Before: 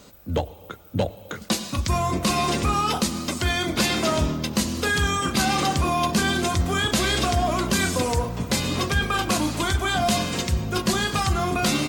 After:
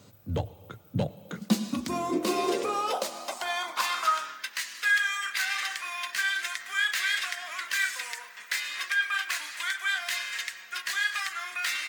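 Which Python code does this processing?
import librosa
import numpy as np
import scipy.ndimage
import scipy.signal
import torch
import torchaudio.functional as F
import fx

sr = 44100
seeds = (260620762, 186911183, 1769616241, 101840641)

y = fx.tracing_dist(x, sr, depth_ms=0.043)
y = fx.filter_sweep_highpass(y, sr, from_hz=110.0, to_hz=1800.0, start_s=0.72, end_s=4.57, q=4.6)
y = F.gain(torch.from_numpy(y), -8.0).numpy()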